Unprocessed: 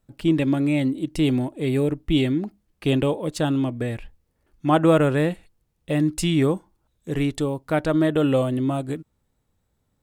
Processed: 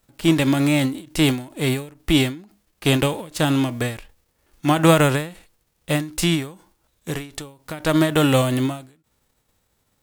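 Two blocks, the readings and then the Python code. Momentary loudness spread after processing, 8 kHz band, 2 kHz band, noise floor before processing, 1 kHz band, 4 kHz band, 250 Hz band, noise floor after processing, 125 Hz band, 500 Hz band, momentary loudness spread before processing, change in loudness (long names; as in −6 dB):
18 LU, +9.0 dB, +6.5 dB, −72 dBFS, +3.0 dB, +8.0 dB, +0.5 dB, −69 dBFS, +2.0 dB, 0.0 dB, 10 LU, +2.0 dB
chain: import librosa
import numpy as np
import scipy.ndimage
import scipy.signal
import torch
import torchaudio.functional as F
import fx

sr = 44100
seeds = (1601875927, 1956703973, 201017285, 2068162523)

y = fx.envelope_flatten(x, sr, power=0.6)
y = fx.end_taper(y, sr, db_per_s=130.0)
y = y * librosa.db_to_amplitude(3.0)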